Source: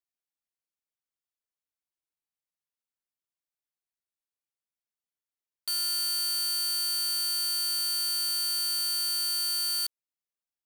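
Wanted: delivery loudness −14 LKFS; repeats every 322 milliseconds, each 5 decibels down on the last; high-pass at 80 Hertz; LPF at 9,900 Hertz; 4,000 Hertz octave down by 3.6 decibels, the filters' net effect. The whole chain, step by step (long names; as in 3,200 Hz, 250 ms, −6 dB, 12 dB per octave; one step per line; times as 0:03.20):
high-pass filter 80 Hz
low-pass filter 9,900 Hz
parametric band 4,000 Hz −4 dB
repeating echo 322 ms, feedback 56%, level −5 dB
level +12.5 dB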